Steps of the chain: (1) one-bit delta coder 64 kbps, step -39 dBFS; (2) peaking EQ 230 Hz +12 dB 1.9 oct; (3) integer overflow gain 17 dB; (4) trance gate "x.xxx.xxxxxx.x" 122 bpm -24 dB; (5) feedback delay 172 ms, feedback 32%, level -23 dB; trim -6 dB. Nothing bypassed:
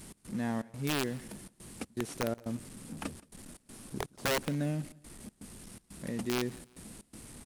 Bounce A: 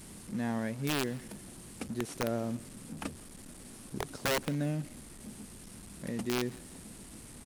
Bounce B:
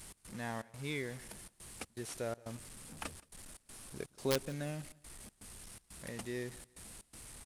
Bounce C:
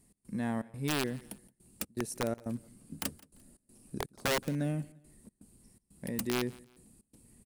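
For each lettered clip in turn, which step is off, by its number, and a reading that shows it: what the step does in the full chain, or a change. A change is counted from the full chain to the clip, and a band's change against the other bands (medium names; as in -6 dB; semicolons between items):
4, momentary loudness spread change -2 LU; 2, 8 kHz band +3.5 dB; 1, momentary loudness spread change -3 LU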